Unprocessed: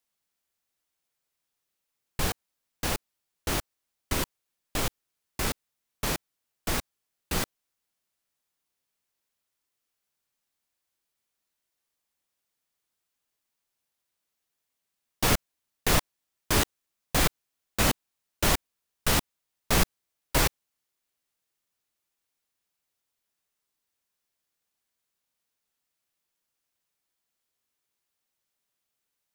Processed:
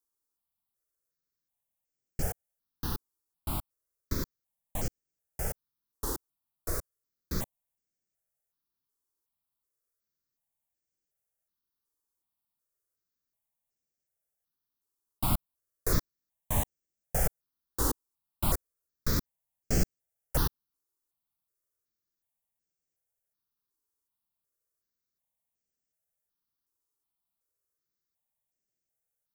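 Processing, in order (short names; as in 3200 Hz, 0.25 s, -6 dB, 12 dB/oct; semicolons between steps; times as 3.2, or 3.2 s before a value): bell 2500 Hz -13.5 dB 1.6 oct; step phaser 2.7 Hz 650–3700 Hz; gain -1 dB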